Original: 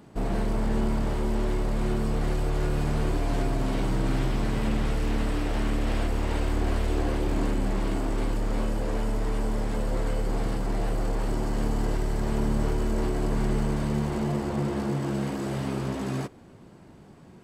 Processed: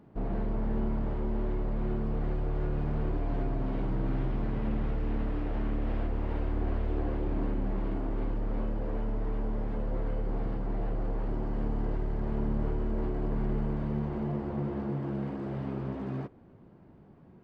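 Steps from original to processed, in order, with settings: tape spacing loss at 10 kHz 38 dB; gain -4 dB

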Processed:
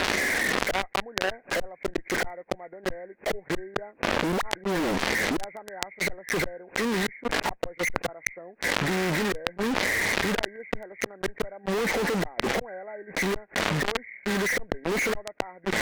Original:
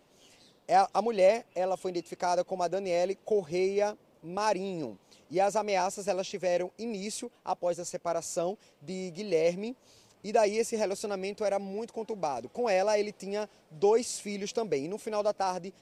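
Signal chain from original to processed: nonlinear frequency compression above 1400 Hz 4:1; flipped gate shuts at -24 dBFS, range -42 dB; 4.32–5.36 dispersion highs, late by 51 ms, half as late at 820 Hz; in parallel at -3 dB: fuzz box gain 61 dB, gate -59 dBFS; on the sum: bell 130 Hz -12.5 dB 0.42 oct; fast leveller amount 100%; gain -10.5 dB

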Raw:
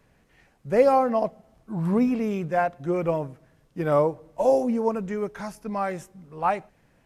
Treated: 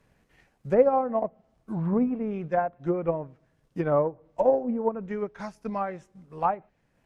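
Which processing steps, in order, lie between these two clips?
treble ducked by the level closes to 1300 Hz, closed at -21 dBFS; transient shaper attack +5 dB, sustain -5 dB; gain -3.5 dB

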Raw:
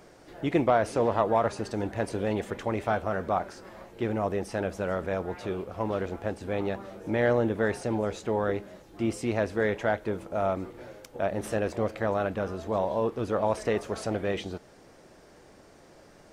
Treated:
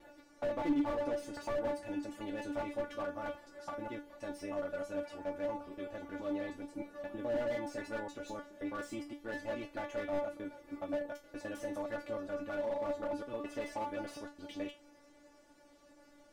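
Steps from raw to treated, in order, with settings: slices in reverse order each 0.105 s, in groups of 4; resonator 290 Hz, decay 0.22 s, harmonics all, mix 100%; slew limiter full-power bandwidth 8.8 Hz; gain +4.5 dB

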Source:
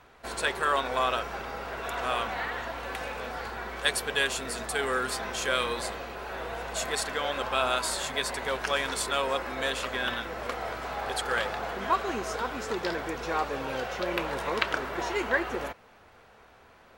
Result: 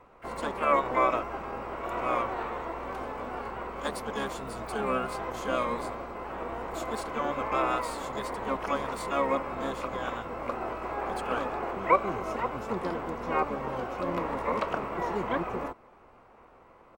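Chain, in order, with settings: resonant high shelf 1500 Hz -9.5 dB, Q 3; harmoniser -12 st -4 dB, +12 st -11 dB; gain -3.5 dB

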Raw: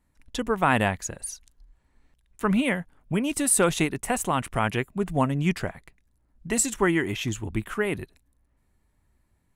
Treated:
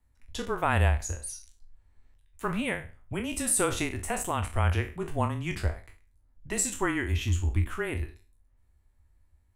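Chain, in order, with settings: spectral trails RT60 0.35 s; frequency shift -21 Hz; resonant low shelf 110 Hz +8.5 dB, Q 3; gain -6 dB

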